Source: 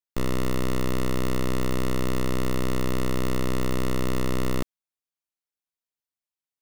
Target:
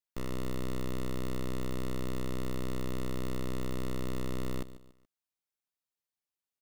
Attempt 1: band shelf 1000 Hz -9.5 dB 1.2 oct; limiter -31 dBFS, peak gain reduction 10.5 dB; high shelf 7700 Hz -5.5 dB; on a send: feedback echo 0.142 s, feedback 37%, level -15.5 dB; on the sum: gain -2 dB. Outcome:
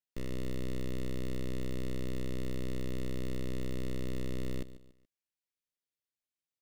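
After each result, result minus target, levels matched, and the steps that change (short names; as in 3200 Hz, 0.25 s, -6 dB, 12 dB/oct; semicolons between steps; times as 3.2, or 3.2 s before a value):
1000 Hz band -9.0 dB; 8000 Hz band -2.5 dB
remove: band shelf 1000 Hz -9.5 dB 1.2 oct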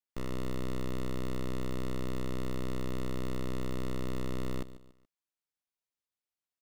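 8000 Hz band -2.5 dB
remove: high shelf 7700 Hz -5.5 dB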